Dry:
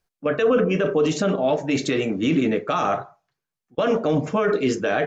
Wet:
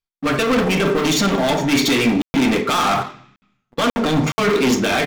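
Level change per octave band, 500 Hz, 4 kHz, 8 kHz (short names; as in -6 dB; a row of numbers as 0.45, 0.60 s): +0.5 dB, +12.0 dB, n/a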